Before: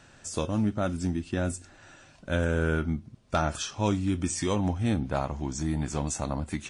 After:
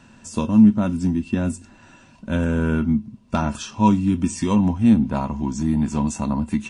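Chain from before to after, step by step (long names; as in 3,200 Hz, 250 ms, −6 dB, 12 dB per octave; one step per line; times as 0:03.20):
low-shelf EQ 240 Hz +3.5 dB
hollow resonant body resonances 220/970/2,700 Hz, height 15 dB, ringing for 65 ms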